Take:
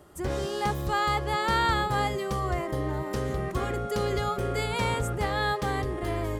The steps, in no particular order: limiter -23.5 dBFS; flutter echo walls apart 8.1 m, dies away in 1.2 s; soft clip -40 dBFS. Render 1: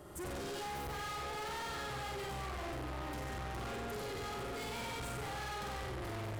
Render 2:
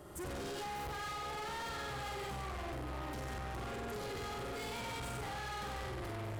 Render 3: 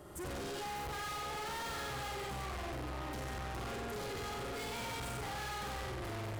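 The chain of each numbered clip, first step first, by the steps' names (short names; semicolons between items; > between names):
limiter > flutter echo > soft clip; flutter echo > limiter > soft clip; flutter echo > soft clip > limiter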